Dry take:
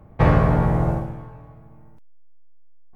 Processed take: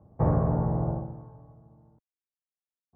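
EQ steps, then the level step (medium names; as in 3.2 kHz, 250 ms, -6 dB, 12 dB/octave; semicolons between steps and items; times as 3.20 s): high-pass 67 Hz; four-pole ladder low-pass 1.2 kHz, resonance 20%; bass shelf 360 Hz +3.5 dB; -4.5 dB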